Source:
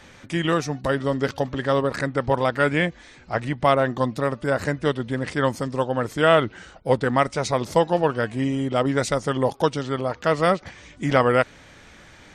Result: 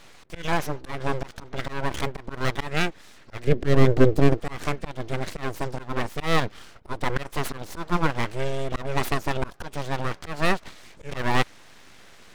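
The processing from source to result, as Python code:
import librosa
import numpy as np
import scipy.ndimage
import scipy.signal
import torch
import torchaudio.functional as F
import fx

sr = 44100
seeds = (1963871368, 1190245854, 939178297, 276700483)

y = np.abs(x)
y = fx.auto_swell(y, sr, attack_ms=189.0)
y = fx.low_shelf_res(y, sr, hz=630.0, db=9.5, q=1.5, at=(3.47, 4.4))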